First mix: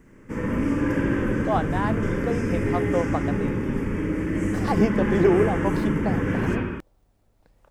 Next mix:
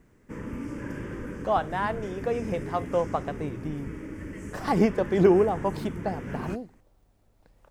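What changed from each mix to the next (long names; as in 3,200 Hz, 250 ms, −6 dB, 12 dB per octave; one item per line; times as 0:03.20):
background −4.5 dB
reverb: off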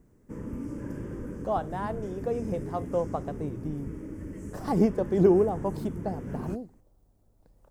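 master: add parametric band 2,300 Hz −12.5 dB 2.3 octaves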